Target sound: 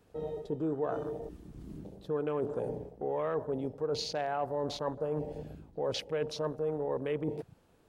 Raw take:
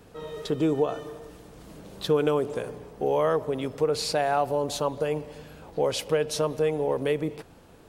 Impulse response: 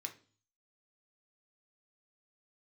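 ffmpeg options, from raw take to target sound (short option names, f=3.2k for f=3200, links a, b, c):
-af "afwtdn=0.0158,areverse,acompressor=threshold=-35dB:ratio=4,areverse,volume=3dB"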